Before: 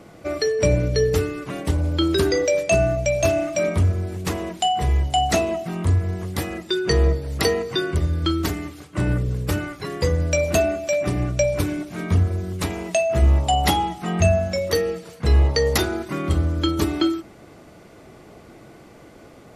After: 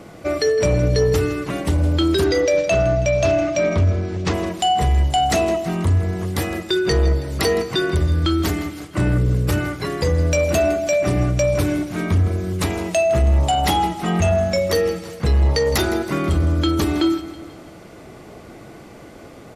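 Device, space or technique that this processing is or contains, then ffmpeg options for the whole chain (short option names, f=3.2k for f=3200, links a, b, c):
soft clipper into limiter: -filter_complex "[0:a]asettb=1/sr,asplit=3[a][b][c];[a]atrim=end=2.244[d];[b]atrim=start=2.24:end=4.34,asetpts=PTS-STARTPTS,afade=t=in:d=0.004:c=qsin,afade=t=out:st=2.096:d=0.004:c=qsin,lowpass=f=6.1k:w=0.5412,lowpass=f=6.1k:w=1.3066[e];[c]atrim=start=4.336[f];[d][e]acrossfade=d=0.004:c1=hsin:c2=qsin[g];[g][f]acrossfade=d=0.004:c1=qsin:c2=hsin,asoftclip=type=tanh:threshold=-11.5dB,alimiter=limit=-16dB:level=0:latency=1,aecho=1:1:162|324|486|648|810:0.178|0.0925|0.0481|0.025|0.013,volume=5dB"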